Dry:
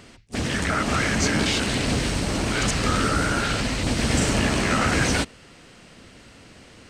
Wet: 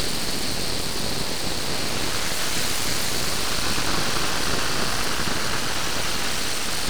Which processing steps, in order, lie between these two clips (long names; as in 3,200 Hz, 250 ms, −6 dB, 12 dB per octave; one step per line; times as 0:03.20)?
extreme stretch with random phases 4.5×, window 0.50 s, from 0:02.05
parametric band 4,400 Hz +12 dB 0.4 octaves
full-wave rectification